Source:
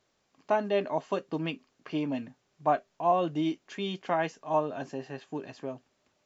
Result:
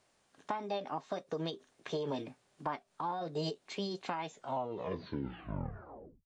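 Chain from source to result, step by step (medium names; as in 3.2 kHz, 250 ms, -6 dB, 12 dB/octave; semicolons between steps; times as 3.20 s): tape stop on the ending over 2.01 s; compression 6:1, threshold -34 dBFS, peak gain reduction 13.5 dB; dynamic bell 1.3 kHz, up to -5 dB, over -49 dBFS, Q 0.93; formant shift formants +5 st; trim +1.5 dB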